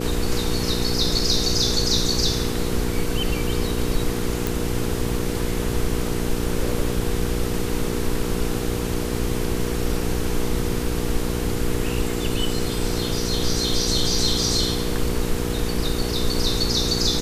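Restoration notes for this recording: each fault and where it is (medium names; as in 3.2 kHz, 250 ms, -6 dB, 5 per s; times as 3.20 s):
hum 60 Hz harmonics 8 -27 dBFS
4.47 s: pop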